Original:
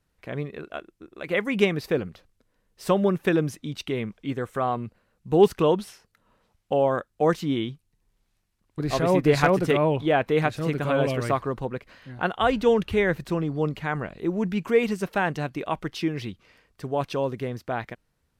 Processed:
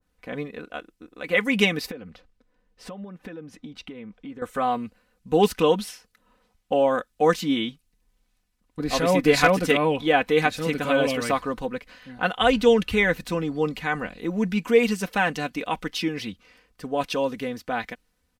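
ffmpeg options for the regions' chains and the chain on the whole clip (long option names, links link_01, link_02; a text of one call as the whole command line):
ffmpeg -i in.wav -filter_complex "[0:a]asettb=1/sr,asplit=3[link_01][link_02][link_03];[link_01]atrim=end=1.914[link_04];[link_02]atrim=start=1.91:end=4.42,asetpts=PTS-STARTPTS,afade=type=in:duration=0.004:curve=qsin,afade=type=out:start_time=2.506:duration=0.004:curve=qsin,aemphasis=mode=reproduction:type=50fm,acompressor=threshold=-36dB:ratio=6:attack=3.2:release=140:knee=1:detection=peak[link_05];[link_03]atrim=start=4.416[link_06];[link_04][link_05]acrossfade=duration=0.004:curve1=hsin:curve2=qsin[link_07];[link_07][link_06]acrossfade=duration=0.004:curve1=qsin:curve2=hsin,aecho=1:1:4:0.68,adynamicequalizer=threshold=0.0141:dfrequency=1700:dqfactor=0.7:tfrequency=1700:tqfactor=0.7:attack=5:release=100:ratio=0.375:range=3.5:mode=boostabove:tftype=highshelf,volume=-1dB" out.wav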